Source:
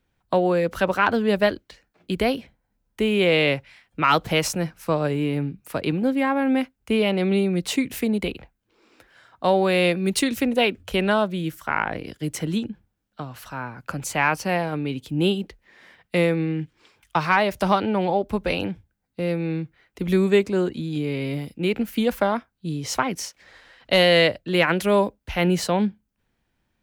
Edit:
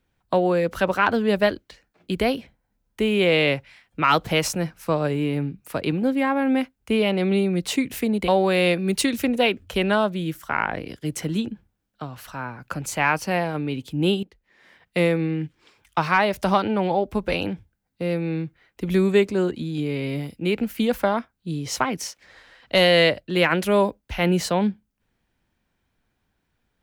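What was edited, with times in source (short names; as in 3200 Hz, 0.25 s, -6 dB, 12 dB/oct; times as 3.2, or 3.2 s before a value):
8.28–9.46 cut
15.41–16.15 fade in, from -16 dB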